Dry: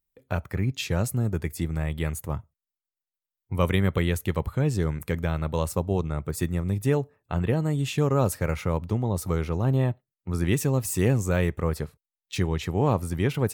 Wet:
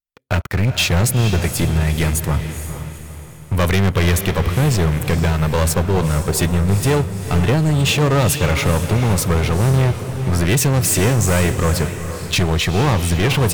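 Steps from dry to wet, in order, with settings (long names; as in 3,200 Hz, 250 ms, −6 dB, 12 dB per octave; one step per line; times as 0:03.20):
parametric band 3,600 Hz +5.5 dB 2.2 octaves
leveller curve on the samples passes 5
feedback delay with all-pass diffusion 460 ms, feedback 43%, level −9 dB
level −4.5 dB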